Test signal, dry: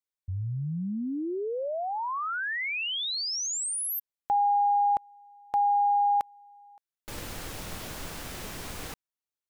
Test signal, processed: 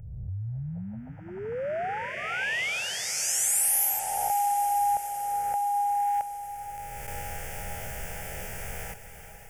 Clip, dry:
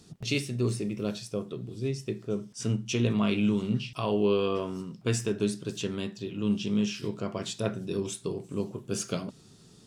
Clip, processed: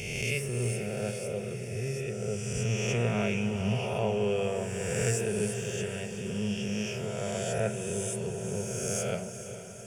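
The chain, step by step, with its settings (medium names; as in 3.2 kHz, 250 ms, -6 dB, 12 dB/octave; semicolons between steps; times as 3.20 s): reverse spectral sustain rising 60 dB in 1.94 s; static phaser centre 1.1 kHz, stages 6; echo that smears into a reverb 455 ms, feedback 65%, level -11 dB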